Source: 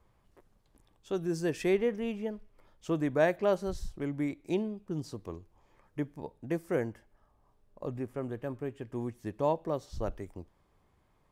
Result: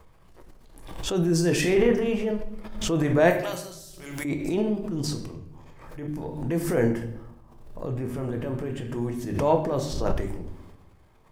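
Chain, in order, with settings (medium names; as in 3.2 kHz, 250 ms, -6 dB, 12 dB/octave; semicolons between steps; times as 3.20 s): hum notches 50/100/150/200/250/300 Hz; 3.30–4.25 s: pre-emphasis filter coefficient 0.97; transient shaper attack -8 dB, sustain +9 dB; 5.25–6.08 s: compression 2.5:1, threshold -53 dBFS, peak gain reduction 13.5 dB; reverberation RT60 0.80 s, pre-delay 6 ms, DRR 3.5 dB; swell ahead of each attack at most 57 dB/s; trim +6.5 dB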